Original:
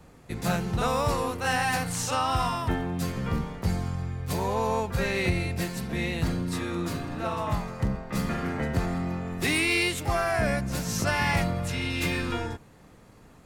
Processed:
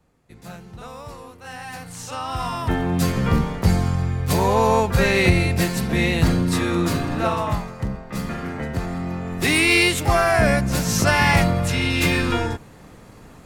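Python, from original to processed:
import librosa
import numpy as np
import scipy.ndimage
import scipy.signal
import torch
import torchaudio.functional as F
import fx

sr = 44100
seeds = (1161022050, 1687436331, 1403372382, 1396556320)

y = fx.gain(x, sr, db=fx.line((1.41, -11.5), (2.34, -1.5), (2.94, 9.5), (7.24, 9.5), (7.75, 1.0), (8.85, 1.0), (9.73, 8.5)))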